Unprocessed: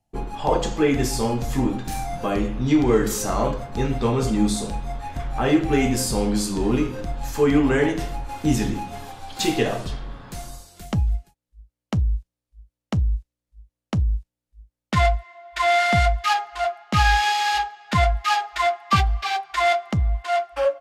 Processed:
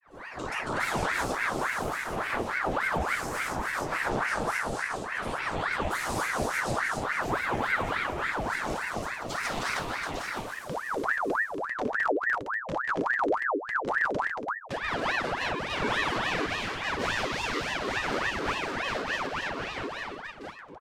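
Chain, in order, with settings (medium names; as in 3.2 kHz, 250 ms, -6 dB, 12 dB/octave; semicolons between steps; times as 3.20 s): fade out at the end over 3.84 s; multi-tap echo 59/187/241/706 ms -9/-4/-5/-5 dB; level rider gain up to 9 dB; granulator 261 ms, grains 29 per s, spray 263 ms, pitch spread up and down by 3 st; ring modulator with a swept carrier 1.1 kHz, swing 70%, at 3.5 Hz; trim -6 dB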